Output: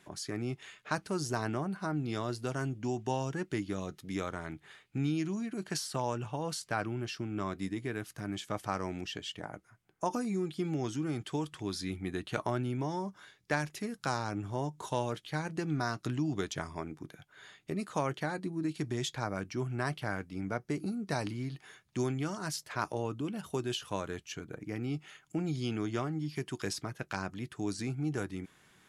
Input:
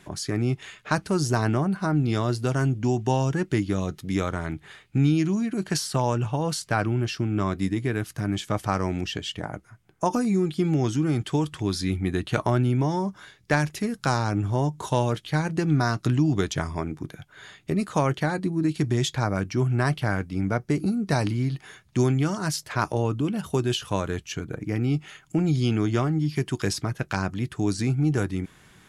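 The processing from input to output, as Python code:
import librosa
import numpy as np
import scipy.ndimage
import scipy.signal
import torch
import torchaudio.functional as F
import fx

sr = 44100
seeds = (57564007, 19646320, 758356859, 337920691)

y = fx.low_shelf(x, sr, hz=130.0, db=-10.5)
y = F.gain(torch.from_numpy(y), -8.0).numpy()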